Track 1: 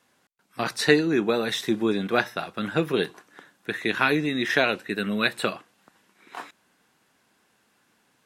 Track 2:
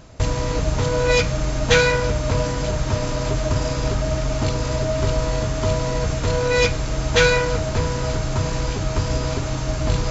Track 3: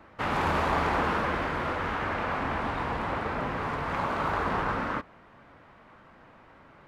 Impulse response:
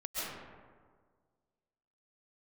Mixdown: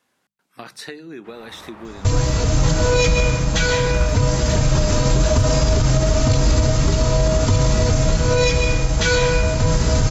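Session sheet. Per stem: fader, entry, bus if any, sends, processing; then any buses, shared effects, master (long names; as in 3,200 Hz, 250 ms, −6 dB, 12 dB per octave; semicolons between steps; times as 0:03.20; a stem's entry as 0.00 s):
−3.0 dB, 0.00 s, bus A, no send, no processing
0.0 dB, 1.85 s, no bus, send −6 dB, bass and treble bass +6 dB, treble +7 dB; automatic gain control; barber-pole flanger 3.2 ms +2.4 Hz
−16.5 dB, 1.05 s, bus A, send −6 dB, no processing
bus A: 0.0 dB, mains-hum notches 50/100/150/200 Hz; downward compressor 5 to 1, threshold −33 dBFS, peak gain reduction 16 dB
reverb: on, RT60 1.7 s, pre-delay 95 ms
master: brickwall limiter −7 dBFS, peak gain reduction 7 dB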